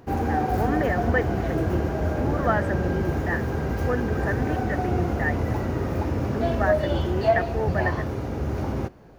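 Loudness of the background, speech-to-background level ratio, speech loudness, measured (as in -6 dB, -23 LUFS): -26.0 LUFS, -4.0 dB, -30.0 LUFS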